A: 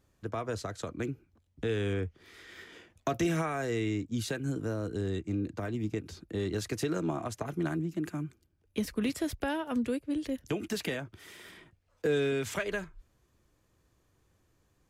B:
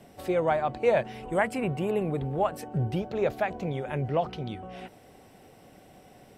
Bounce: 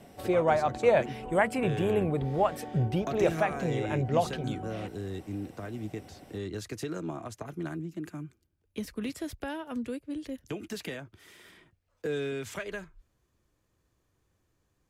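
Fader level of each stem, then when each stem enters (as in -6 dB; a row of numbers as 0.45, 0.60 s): -4.0, +0.5 dB; 0.00, 0.00 s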